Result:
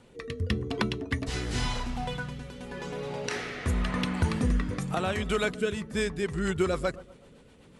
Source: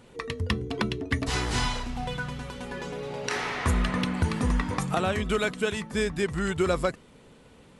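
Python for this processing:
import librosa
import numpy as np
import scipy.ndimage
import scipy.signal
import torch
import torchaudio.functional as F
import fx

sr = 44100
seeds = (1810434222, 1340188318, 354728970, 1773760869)

y = fx.echo_bbd(x, sr, ms=123, stages=1024, feedback_pct=48, wet_db=-17.5)
y = fx.rotary_switch(y, sr, hz=0.9, then_hz=8.0, switch_at_s=5.75)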